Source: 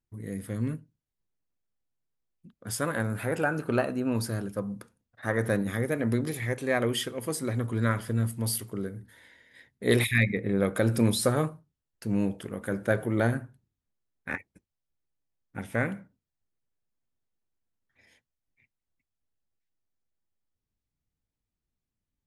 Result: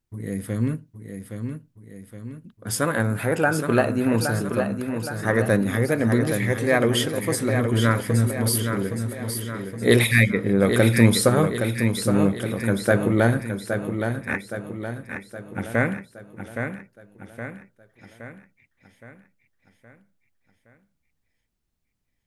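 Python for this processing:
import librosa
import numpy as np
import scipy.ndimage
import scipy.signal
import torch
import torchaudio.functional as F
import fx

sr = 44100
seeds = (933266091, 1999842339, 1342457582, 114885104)

y = fx.echo_feedback(x, sr, ms=818, feedback_pct=51, wet_db=-7.0)
y = F.gain(torch.from_numpy(y), 6.5).numpy()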